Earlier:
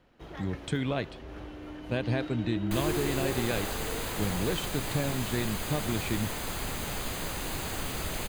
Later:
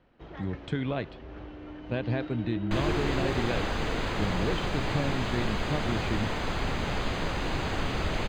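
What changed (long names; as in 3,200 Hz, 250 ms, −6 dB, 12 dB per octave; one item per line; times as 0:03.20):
second sound +6.0 dB
master: add high-frequency loss of the air 170 metres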